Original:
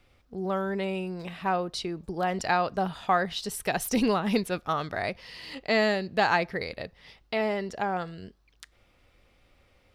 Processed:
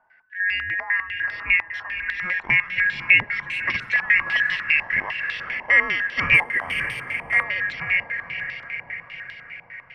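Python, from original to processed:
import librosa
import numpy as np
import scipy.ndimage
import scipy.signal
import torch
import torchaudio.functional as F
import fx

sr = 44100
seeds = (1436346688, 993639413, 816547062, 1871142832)

p1 = fx.band_shuffle(x, sr, order='2143')
p2 = fx.peak_eq(p1, sr, hz=360.0, db=-7.0, octaves=1.1)
p3 = p2 + fx.echo_diffused(p2, sr, ms=535, feedback_pct=61, wet_db=-7.0, dry=0)
p4 = fx.resample_bad(p3, sr, factor=4, down='filtered', up='zero_stuff', at=(6.34, 7.43))
p5 = fx.filter_held_lowpass(p4, sr, hz=10.0, low_hz=910.0, high_hz=3600.0)
y = p5 * librosa.db_to_amplitude(-1.0)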